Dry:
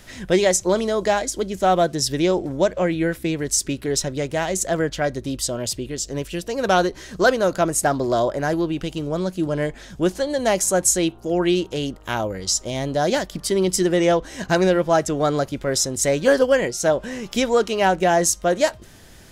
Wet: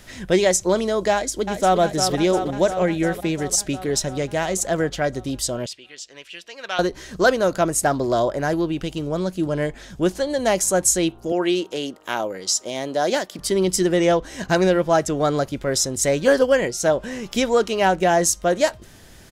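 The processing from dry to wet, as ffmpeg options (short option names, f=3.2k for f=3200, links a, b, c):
-filter_complex "[0:a]asplit=2[a][b];[b]afade=t=in:st=1.12:d=0.01,afade=t=out:st=1.8:d=0.01,aecho=0:1:350|700|1050|1400|1750|2100|2450|2800|3150|3500|3850|4200:0.446684|0.335013|0.25126|0.188445|0.141333|0.106|0.0795001|0.0596251|0.0447188|0.0335391|0.0251543|0.0188657[c];[a][c]amix=inputs=2:normalize=0,asettb=1/sr,asplit=3[d][e][f];[d]atrim=end=5.664[g];[e]atrim=start=5.66:end=6.79,asetpts=PTS-STARTPTS,afade=t=in:d=0.004:c=qsin,afade=t=out:st=1.126:d=0.004:c=qsin,bandpass=f=2.6k:t=q:w=1.3[h];[f]atrim=start=6.786[i];[g][h]acrossfade=d=0.004:c1=hsin:c2=qsin[j];[j][i]acrossfade=d=0.004:c1=qsin:c2=hsin,asettb=1/sr,asplit=3[k][l][m];[k]atrim=end=11.324[n];[l]atrim=start=11.32:end=13.39,asetpts=PTS-STARTPTS,afade=t=in:d=0.004:c=qsin,afade=t=out:st=2.066:d=0.004:c=qsin,highpass=270[o];[m]atrim=start=13.386[p];[n][o]acrossfade=d=0.004:c1=hsin:c2=qsin[q];[q][p]acrossfade=d=0.004:c1=qsin:c2=hsin"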